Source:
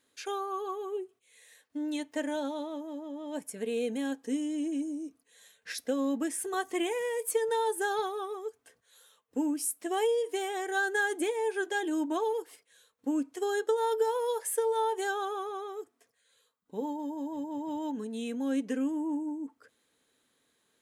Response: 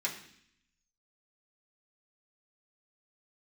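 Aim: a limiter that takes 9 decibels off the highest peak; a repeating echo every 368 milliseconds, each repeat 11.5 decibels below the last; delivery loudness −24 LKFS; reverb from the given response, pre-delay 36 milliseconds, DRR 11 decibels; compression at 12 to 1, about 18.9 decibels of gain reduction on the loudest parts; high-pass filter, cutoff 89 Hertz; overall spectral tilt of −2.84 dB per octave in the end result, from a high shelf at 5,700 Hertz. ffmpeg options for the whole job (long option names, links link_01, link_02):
-filter_complex "[0:a]highpass=89,highshelf=frequency=5700:gain=4.5,acompressor=threshold=-43dB:ratio=12,alimiter=level_in=15.5dB:limit=-24dB:level=0:latency=1,volume=-15.5dB,aecho=1:1:368|736|1104:0.266|0.0718|0.0194,asplit=2[link_01][link_02];[1:a]atrim=start_sample=2205,adelay=36[link_03];[link_02][link_03]afir=irnorm=-1:irlink=0,volume=-15.5dB[link_04];[link_01][link_04]amix=inputs=2:normalize=0,volume=23.5dB"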